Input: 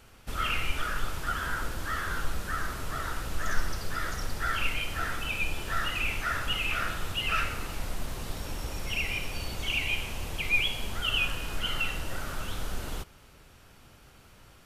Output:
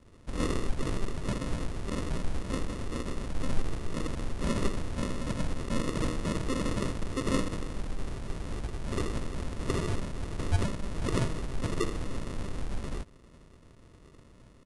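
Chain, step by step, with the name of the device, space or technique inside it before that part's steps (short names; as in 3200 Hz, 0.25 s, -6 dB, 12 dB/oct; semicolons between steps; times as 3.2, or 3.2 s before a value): crushed at another speed (playback speed 2×; sample-and-hold 28×; playback speed 0.5×)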